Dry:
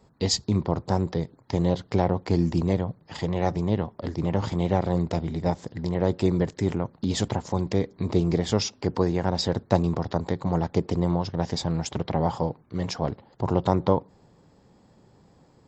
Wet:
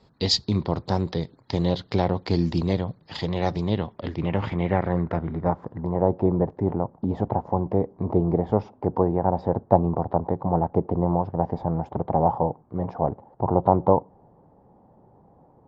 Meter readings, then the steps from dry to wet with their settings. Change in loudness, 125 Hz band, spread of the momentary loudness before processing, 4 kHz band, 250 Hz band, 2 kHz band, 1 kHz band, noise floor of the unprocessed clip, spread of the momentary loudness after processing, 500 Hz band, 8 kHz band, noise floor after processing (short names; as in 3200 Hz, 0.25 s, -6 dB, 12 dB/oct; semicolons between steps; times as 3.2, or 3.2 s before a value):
+1.5 dB, 0.0 dB, 6 LU, +1.0 dB, +0.5 dB, -0.5 dB, +5.0 dB, -59 dBFS, 7 LU, +2.5 dB, n/a, -57 dBFS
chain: low-pass sweep 4200 Hz -> 820 Hz, 3.61–6.1